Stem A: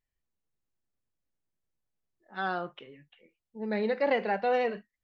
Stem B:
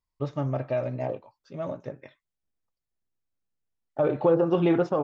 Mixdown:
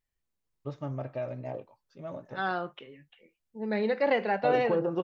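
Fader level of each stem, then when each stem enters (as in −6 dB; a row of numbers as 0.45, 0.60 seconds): +1.0, −7.0 decibels; 0.00, 0.45 seconds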